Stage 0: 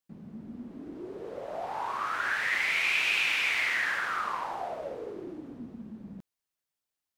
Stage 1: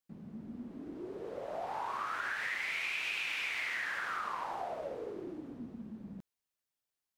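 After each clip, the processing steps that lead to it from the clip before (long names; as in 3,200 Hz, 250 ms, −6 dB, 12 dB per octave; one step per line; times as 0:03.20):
downward compressor, threshold −31 dBFS, peak gain reduction 8 dB
level −2.5 dB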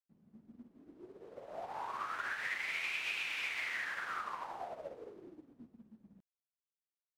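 expander for the loud parts 2.5 to 1, over −48 dBFS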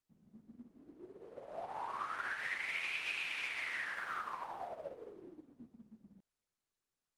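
Opus 32 kbit/s 48,000 Hz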